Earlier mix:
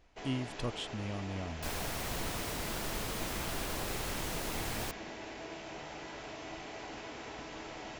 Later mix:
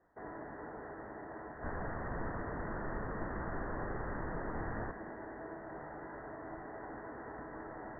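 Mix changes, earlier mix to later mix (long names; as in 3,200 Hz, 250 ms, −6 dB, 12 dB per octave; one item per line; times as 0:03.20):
speech: muted
master: add Chebyshev low-pass filter 1,900 Hz, order 8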